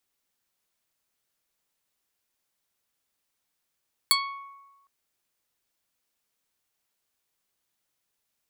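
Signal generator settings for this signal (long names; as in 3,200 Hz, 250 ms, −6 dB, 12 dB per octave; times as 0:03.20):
Karplus-Strong string C#6, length 0.76 s, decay 1.20 s, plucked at 0.39, medium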